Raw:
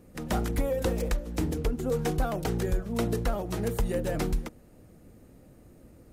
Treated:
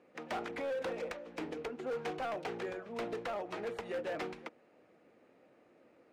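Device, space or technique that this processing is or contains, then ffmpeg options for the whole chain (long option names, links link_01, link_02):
megaphone: -af "highpass=470,lowpass=2900,equalizer=frequency=2400:width_type=o:width=0.47:gain=4,asoftclip=type=hard:threshold=-31.5dB,volume=-2dB"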